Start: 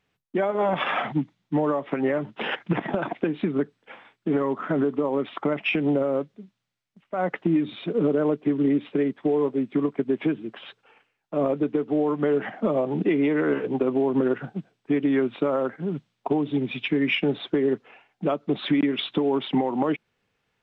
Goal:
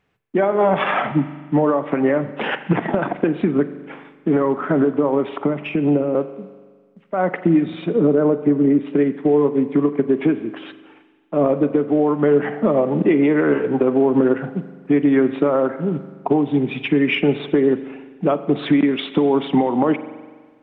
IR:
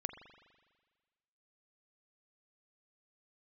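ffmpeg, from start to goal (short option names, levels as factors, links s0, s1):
-filter_complex "[0:a]asettb=1/sr,asplit=3[s0][s1][s2];[s0]atrim=end=5.264[s3];[s1]atrim=start=5.26:end=6.15,asetpts=PTS-STARTPTS,afade=t=in:d=0.004:c=qsin,afade=t=out:st=0.886:d=0.004:c=qsin,acrossover=split=430[s4][s5];[s5]acompressor=threshold=0.0251:ratio=6[s6];[s4][s6]amix=inputs=2:normalize=0[s7];[s2]atrim=start=6.146[s8];[s3][s7]acrossfade=d=0.004:c1=hsin:c2=qsin[s9];[s9][s8]acrossfade=d=0.004:c1=qsin:c2=hsin,asettb=1/sr,asplit=3[s10][s11][s12];[s10]atrim=end=7.964[s13];[s11]atrim=start=7.96:end=8.87,asetpts=PTS-STARTPTS,afade=t=in:d=0.004:c=qsin,afade=t=out:st=0.906:d=0.004:c=qsin,highshelf=f=2600:g=-11[s14];[s12]atrim=start=8.866[s15];[s13][s14]acrossfade=d=0.004:c1=hsin:c2=qsin[s16];[s16][s15]acrossfade=d=0.004:c1=qsin:c2=hsin,asplit=2[s17][s18];[1:a]atrim=start_sample=2205,lowpass=2900[s19];[s18][s19]afir=irnorm=-1:irlink=0,volume=1.33[s20];[s17][s20]amix=inputs=2:normalize=0"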